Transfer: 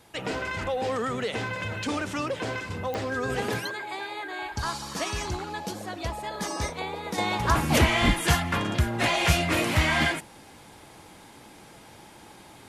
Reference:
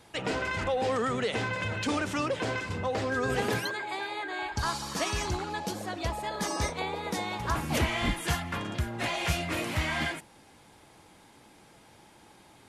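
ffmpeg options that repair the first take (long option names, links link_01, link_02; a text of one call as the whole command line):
ffmpeg -i in.wav -af "adeclick=threshold=4,agate=range=-21dB:threshold=-41dB,asetnsamples=nb_out_samples=441:pad=0,asendcmd='7.18 volume volume -7dB',volume=0dB" out.wav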